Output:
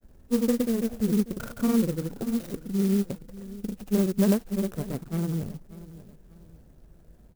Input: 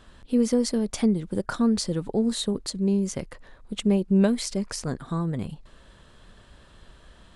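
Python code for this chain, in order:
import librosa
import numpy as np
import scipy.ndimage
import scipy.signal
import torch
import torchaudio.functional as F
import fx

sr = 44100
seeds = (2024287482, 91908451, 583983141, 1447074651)

y = scipy.ndimage.median_filter(x, 41, mode='constant')
y = fx.granulator(y, sr, seeds[0], grain_ms=100.0, per_s=20.0, spray_ms=100.0, spread_st=0)
y = fx.echo_feedback(y, sr, ms=589, feedback_pct=36, wet_db=-17.0)
y = fx.clock_jitter(y, sr, seeds[1], jitter_ms=0.074)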